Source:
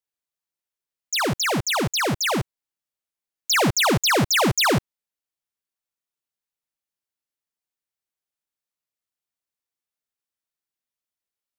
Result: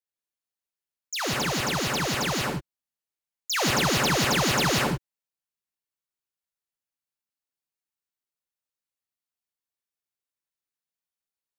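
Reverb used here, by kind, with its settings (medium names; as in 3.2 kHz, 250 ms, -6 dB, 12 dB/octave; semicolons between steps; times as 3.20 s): gated-style reverb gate 200 ms rising, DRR -1.5 dB; trim -7.5 dB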